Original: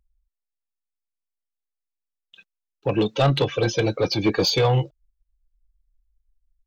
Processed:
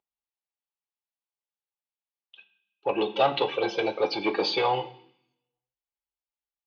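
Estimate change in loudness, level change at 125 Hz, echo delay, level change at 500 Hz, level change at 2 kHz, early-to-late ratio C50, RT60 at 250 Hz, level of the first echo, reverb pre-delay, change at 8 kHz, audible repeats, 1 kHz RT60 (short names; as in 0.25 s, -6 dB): -5.0 dB, -22.0 dB, none, -3.5 dB, -2.0 dB, 14.0 dB, 0.95 s, none, 3 ms, under -15 dB, none, 0.65 s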